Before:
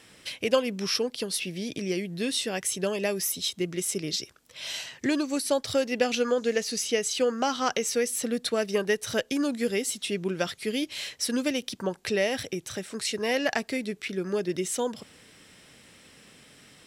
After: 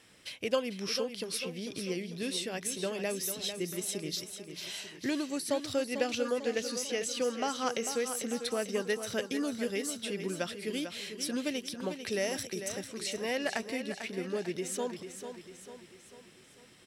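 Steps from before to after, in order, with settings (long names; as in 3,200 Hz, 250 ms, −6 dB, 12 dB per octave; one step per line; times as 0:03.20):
0:12.16–0:12.72: high shelf with overshoot 4,800 Hz +7 dB, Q 1.5
repeating echo 446 ms, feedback 50%, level −9 dB
level −6.5 dB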